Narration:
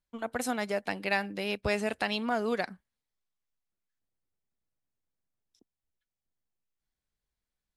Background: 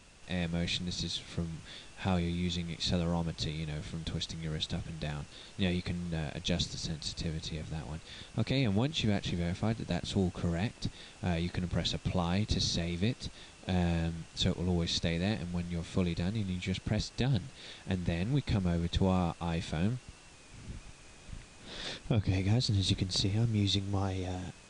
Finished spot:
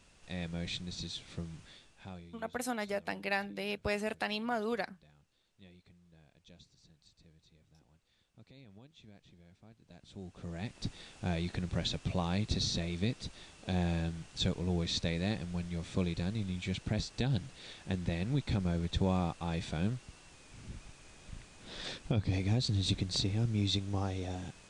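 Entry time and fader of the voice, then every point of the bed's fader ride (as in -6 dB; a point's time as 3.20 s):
2.20 s, -4.5 dB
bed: 1.60 s -5.5 dB
2.59 s -26.5 dB
9.77 s -26.5 dB
10.85 s -2 dB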